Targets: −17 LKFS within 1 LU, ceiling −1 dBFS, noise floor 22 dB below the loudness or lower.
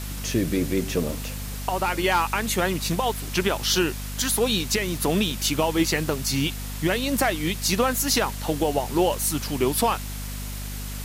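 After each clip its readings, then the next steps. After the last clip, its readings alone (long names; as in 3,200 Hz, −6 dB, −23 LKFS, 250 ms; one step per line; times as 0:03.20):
mains hum 50 Hz; hum harmonics up to 250 Hz; level of the hum −31 dBFS; background noise floor −33 dBFS; target noise floor −46 dBFS; integrated loudness −24.0 LKFS; sample peak −8.5 dBFS; target loudness −17.0 LKFS
→ mains-hum notches 50/100/150/200/250 Hz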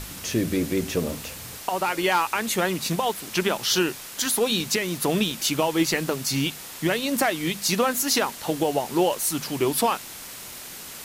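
mains hum none found; background noise floor −39 dBFS; target noise floor −46 dBFS
→ noise reduction from a noise print 7 dB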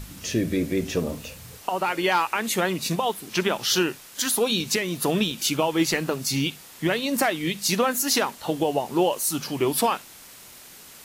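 background noise floor −46 dBFS; target noise floor −47 dBFS
→ noise reduction from a noise print 6 dB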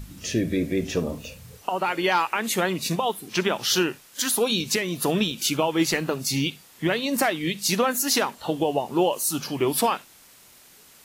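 background noise floor −52 dBFS; integrated loudness −24.5 LKFS; sample peak −9.0 dBFS; target loudness −17.0 LKFS
→ level +7.5 dB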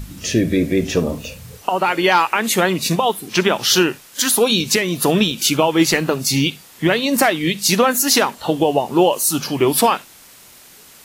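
integrated loudness −17.0 LKFS; sample peak −1.5 dBFS; background noise floor −45 dBFS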